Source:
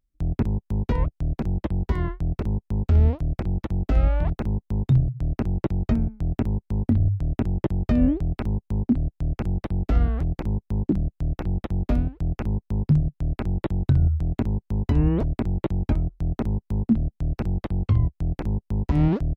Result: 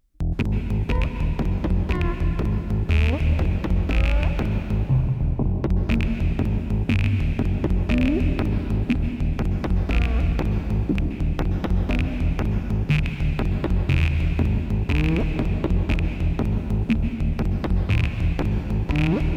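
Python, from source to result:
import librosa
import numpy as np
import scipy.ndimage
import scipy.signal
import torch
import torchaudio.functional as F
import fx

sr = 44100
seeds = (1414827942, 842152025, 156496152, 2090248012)

p1 = fx.rattle_buzz(x, sr, strikes_db=-17.0, level_db=-13.0)
p2 = fx.steep_lowpass(p1, sr, hz=1100.0, slope=96, at=(4.87, 5.46))
p3 = fx.over_compress(p2, sr, threshold_db=-30.0, ratio=-1.0)
p4 = p2 + (p3 * 10.0 ** (2.0 / 20.0))
p5 = fx.rev_plate(p4, sr, seeds[0], rt60_s=3.2, hf_ratio=0.9, predelay_ms=115, drr_db=5.0)
y = p5 * 10.0 ** (-3.0 / 20.0)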